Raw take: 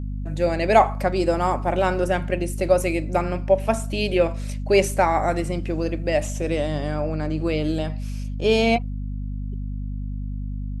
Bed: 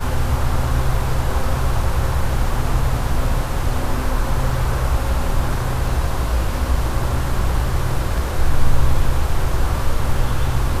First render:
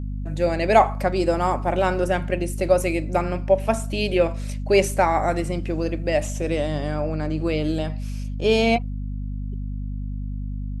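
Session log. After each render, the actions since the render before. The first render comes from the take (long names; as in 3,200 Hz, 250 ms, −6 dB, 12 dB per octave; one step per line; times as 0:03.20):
no processing that can be heard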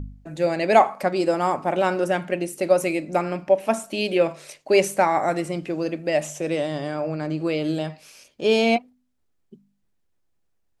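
hum removal 50 Hz, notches 5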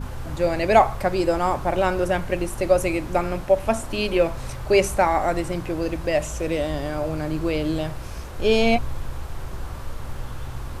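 mix in bed −13.5 dB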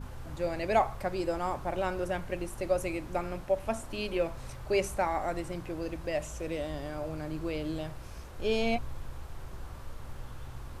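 level −10.5 dB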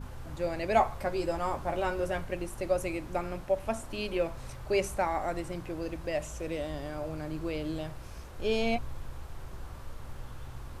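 0:00.75–0:02.25: double-tracking delay 13 ms −5.5 dB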